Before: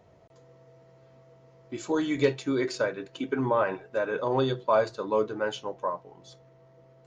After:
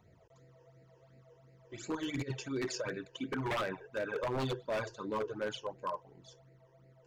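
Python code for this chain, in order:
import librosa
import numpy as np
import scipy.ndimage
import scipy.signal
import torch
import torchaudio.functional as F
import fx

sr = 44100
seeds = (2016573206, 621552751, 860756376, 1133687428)

y = fx.over_compress(x, sr, threshold_db=-28.0, ratio=-0.5, at=(1.95, 2.98))
y = fx.phaser_stages(y, sr, stages=12, low_hz=210.0, high_hz=1100.0, hz=2.8, feedback_pct=25)
y = 10.0 ** (-26.0 / 20.0) * (np.abs((y / 10.0 ** (-26.0 / 20.0) + 3.0) % 4.0 - 2.0) - 1.0)
y = y * librosa.db_to_amplitude(-2.5)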